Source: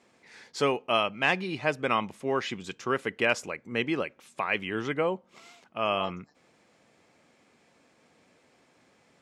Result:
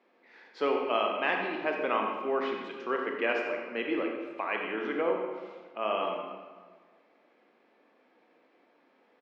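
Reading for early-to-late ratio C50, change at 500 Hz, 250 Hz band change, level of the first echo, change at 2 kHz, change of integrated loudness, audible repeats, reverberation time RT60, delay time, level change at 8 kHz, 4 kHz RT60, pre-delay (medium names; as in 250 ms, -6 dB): 2.5 dB, 0.0 dB, -2.0 dB, -11.0 dB, -3.5 dB, -2.0 dB, 1, 1.5 s, 91 ms, under -20 dB, 1.0 s, 26 ms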